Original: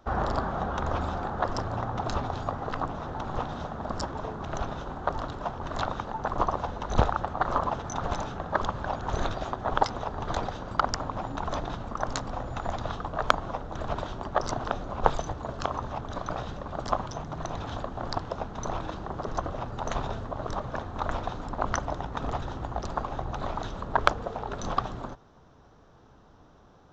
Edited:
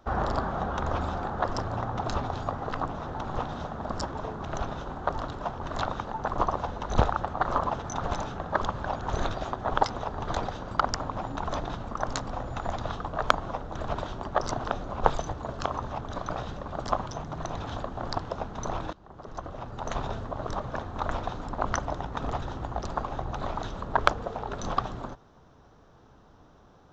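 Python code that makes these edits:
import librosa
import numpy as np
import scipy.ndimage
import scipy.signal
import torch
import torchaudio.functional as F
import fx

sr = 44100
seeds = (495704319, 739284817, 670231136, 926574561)

y = fx.edit(x, sr, fx.fade_in_from(start_s=18.93, length_s=1.18, floor_db=-21.5), tone=tone)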